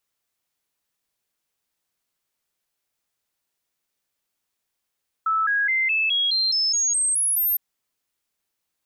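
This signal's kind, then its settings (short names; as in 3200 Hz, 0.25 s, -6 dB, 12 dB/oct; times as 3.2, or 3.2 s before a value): stepped sine 1310 Hz up, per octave 3, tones 11, 0.21 s, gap 0.00 s -18.5 dBFS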